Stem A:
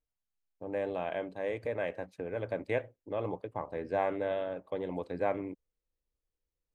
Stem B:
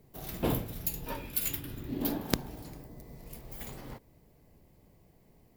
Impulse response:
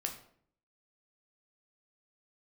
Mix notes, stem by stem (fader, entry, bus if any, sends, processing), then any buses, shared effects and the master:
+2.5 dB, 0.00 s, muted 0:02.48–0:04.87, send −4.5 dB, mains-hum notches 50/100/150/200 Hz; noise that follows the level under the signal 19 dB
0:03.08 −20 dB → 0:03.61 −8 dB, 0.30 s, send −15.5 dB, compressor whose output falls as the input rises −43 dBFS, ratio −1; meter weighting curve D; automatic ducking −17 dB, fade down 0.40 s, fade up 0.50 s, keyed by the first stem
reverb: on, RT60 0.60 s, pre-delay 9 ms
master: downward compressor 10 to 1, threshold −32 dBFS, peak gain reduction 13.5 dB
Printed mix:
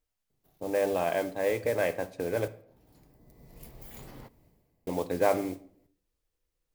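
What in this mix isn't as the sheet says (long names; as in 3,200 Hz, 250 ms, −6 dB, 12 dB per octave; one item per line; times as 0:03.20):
stem B: missing meter weighting curve D
master: missing downward compressor 10 to 1, threshold −32 dBFS, peak gain reduction 13.5 dB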